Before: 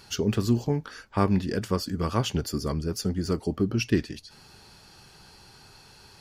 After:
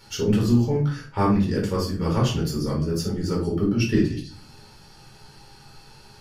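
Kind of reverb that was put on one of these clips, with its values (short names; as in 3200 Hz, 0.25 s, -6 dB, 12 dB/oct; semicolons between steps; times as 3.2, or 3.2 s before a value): shoebox room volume 340 m³, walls furnished, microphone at 4.4 m; gain -5 dB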